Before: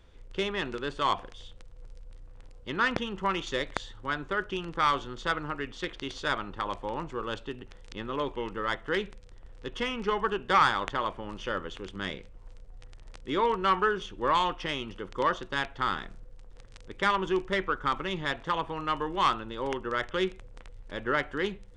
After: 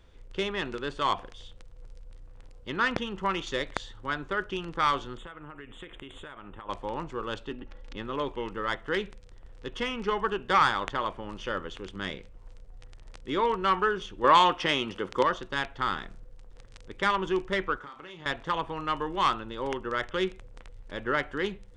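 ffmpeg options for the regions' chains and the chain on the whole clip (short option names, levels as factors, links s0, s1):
-filter_complex "[0:a]asettb=1/sr,asplit=3[s0][s1][s2];[s0]atrim=end=5.174[s3];[s1]atrim=start=5.17:end=6.69,asetpts=PTS-STARTPTS,afade=t=in:d=0.004:c=qsin,afade=t=out:st=1.516:d=0.004:c=qsin,asuperstop=centerf=5100:order=8:qfactor=1.3,acompressor=threshold=0.0112:ratio=16:attack=3.2:release=140:knee=1:detection=peak[s4];[s2]atrim=start=6.686[s5];[s3][s4]acrossfade=d=0.004:c1=hsin:c2=qsin[s6];[s6][s5]acrossfade=d=0.004:c1=qsin:c2=hsin,asettb=1/sr,asplit=3[s7][s8][s9];[s7]atrim=end=7.514[s10];[s8]atrim=start=7.51:end=7.96,asetpts=PTS-STARTPTS,afade=t=in:d=0.004:c=qsin,afade=t=out:st=0.446:d=0.004:c=qsin,aemphasis=mode=reproduction:type=75fm,aecho=1:1:3.6:0.65,atrim=end_sample=19845[s11];[s9]atrim=start=7.956[s12];[s10][s11]acrossfade=d=0.004:c1=hsin:c2=qsin[s13];[s13][s12]acrossfade=d=0.004:c1=qsin:c2=hsin,asettb=1/sr,asplit=3[s14][s15][s16];[s14]atrim=end=14.244[s17];[s15]atrim=start=14.24:end=15.23,asetpts=PTS-STARTPTS,afade=t=in:d=0.004:c=qsin,afade=t=out:st=0.986:d=0.004:c=qsin,highpass=f=180:p=1,acontrast=70[s18];[s16]atrim=start=15.226[s19];[s17][s18]acrossfade=d=0.004:c1=hsin:c2=qsin[s20];[s20][s19]acrossfade=d=0.004:c1=qsin:c2=hsin,asettb=1/sr,asplit=3[s21][s22][s23];[s21]atrim=end=17.784[s24];[s22]atrim=start=17.78:end=18.26,asetpts=PTS-STARTPTS,afade=t=in:d=0.004:c=qsin,afade=t=out:st=0.476:d=0.004:c=qsin,highpass=f=260:p=1,acompressor=threshold=0.01:ratio=16:attack=3.2:release=140:knee=1:detection=peak,asplit=2[s25][s26];[s26]adelay=34,volume=0.447[s27];[s25][s27]amix=inputs=2:normalize=0,atrim=end_sample=21168[s28];[s23]atrim=start=18.256[s29];[s24][s28]acrossfade=d=0.004:c1=hsin:c2=qsin[s30];[s30][s29]acrossfade=d=0.004:c1=qsin:c2=hsin"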